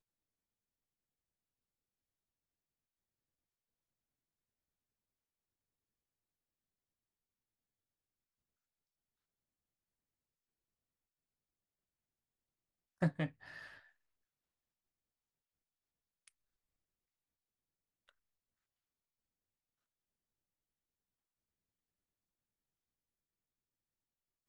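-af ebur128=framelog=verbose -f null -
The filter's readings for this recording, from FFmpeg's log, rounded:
Integrated loudness:
  I:         -38.5 LUFS
  Threshold: -51.0 LUFS
Loudness range:
  LRA:        15.7 LU
  Threshold: -66.3 LUFS
  LRA low:   -61.1 LUFS
  LRA high:  -45.4 LUFS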